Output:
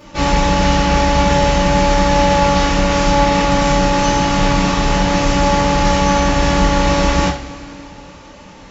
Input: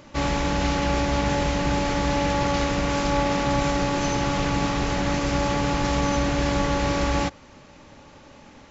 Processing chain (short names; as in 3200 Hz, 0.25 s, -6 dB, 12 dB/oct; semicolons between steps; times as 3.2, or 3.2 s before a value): two-slope reverb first 0.31 s, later 3.1 s, from -22 dB, DRR -7 dB; gain +1 dB